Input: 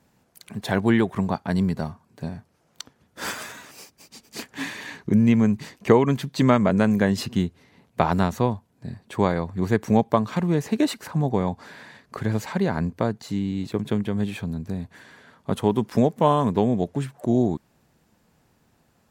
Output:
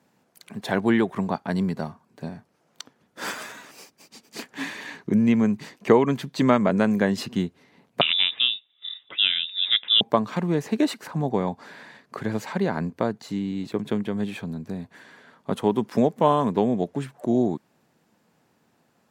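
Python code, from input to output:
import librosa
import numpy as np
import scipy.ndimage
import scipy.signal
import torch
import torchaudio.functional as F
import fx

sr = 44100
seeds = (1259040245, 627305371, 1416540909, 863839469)

y = fx.freq_invert(x, sr, carrier_hz=3700, at=(8.01, 10.01))
y = scipy.signal.sosfilt(scipy.signal.butter(2, 170.0, 'highpass', fs=sr, output='sos'), y)
y = fx.high_shelf(y, sr, hz=5400.0, db=-4.5)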